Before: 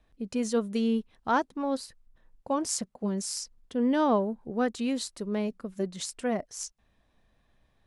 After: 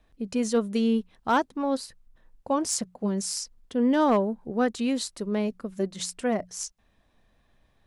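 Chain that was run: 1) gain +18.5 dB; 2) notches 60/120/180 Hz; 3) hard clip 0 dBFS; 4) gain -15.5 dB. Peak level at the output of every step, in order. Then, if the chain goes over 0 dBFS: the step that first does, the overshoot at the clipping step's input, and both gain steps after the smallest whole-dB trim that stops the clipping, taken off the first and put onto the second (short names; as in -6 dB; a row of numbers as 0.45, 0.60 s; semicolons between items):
+4.5, +4.5, 0.0, -15.5 dBFS; step 1, 4.5 dB; step 1 +13.5 dB, step 4 -10.5 dB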